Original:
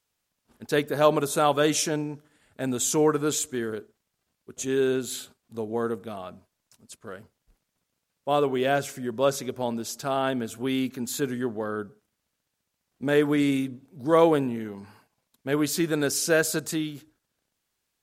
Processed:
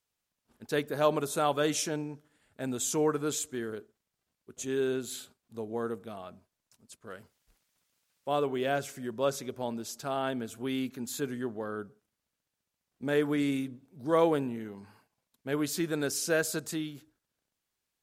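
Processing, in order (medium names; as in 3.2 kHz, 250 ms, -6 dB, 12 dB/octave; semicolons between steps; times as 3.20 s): 7.10–9.14 s: tape noise reduction on one side only encoder only; trim -6 dB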